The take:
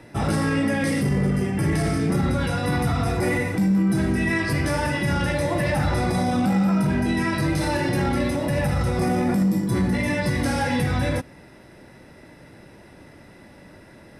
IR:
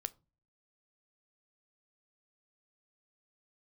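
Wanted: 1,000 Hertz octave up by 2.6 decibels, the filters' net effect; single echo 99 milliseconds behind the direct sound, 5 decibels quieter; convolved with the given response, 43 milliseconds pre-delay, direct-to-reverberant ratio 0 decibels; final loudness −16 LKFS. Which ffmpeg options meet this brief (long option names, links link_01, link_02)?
-filter_complex "[0:a]equalizer=frequency=1000:width_type=o:gain=3.5,aecho=1:1:99:0.562,asplit=2[link_01][link_02];[1:a]atrim=start_sample=2205,adelay=43[link_03];[link_02][link_03]afir=irnorm=-1:irlink=0,volume=2dB[link_04];[link_01][link_04]amix=inputs=2:normalize=0,volume=2dB"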